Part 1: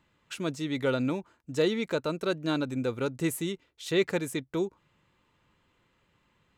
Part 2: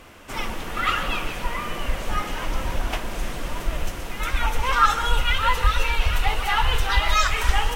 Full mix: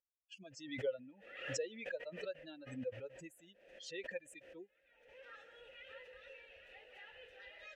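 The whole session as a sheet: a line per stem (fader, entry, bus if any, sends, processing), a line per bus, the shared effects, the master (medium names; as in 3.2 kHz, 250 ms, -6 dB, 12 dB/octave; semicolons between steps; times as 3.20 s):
+1.0 dB, 0.00 s, no send, expander on every frequency bin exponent 3; treble shelf 3.1 kHz +11.5 dB; compression 2.5:1, threshold -34 dBFS, peak gain reduction 9 dB
-19.0 dB, 0.50 s, no send, auto duck -19 dB, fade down 0.60 s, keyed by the first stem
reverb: none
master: vowel filter e; swell ahead of each attack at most 66 dB/s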